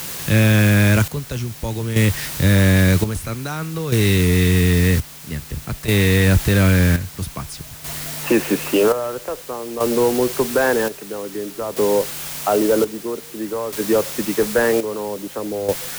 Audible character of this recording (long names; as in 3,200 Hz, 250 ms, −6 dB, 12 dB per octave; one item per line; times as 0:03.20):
a quantiser's noise floor 6 bits, dither triangular
chopped level 0.51 Hz, depth 65%, duty 55%